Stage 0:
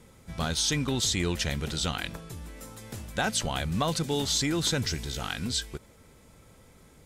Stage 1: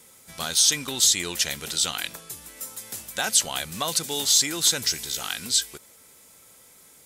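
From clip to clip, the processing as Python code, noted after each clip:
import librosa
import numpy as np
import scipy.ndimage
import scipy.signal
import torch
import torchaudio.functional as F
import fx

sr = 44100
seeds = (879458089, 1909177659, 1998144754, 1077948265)

y = fx.riaa(x, sr, side='recording')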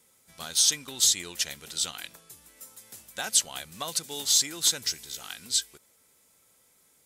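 y = fx.upward_expand(x, sr, threshold_db=-34.0, expansion=1.5)
y = y * 10.0 ** (-2.0 / 20.0)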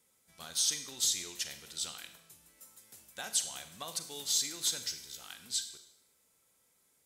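y = fx.rev_schroeder(x, sr, rt60_s=0.77, comb_ms=33, drr_db=8.5)
y = y * 10.0 ** (-8.5 / 20.0)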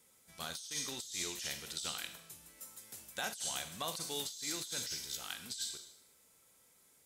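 y = fx.over_compress(x, sr, threshold_db=-41.0, ratio=-1.0)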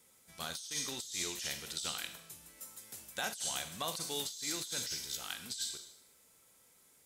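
y = fx.dmg_crackle(x, sr, seeds[0], per_s=490.0, level_db=-69.0)
y = y * 10.0 ** (1.5 / 20.0)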